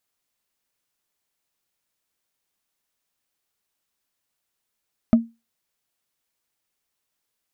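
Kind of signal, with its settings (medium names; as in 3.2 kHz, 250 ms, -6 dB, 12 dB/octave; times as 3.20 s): wood hit, lowest mode 230 Hz, decay 0.24 s, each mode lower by 10 dB, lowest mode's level -7 dB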